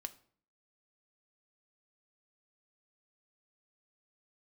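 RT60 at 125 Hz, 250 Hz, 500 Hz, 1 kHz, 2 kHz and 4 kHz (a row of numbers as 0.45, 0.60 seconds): 0.65, 0.65, 0.55, 0.50, 0.45, 0.40 seconds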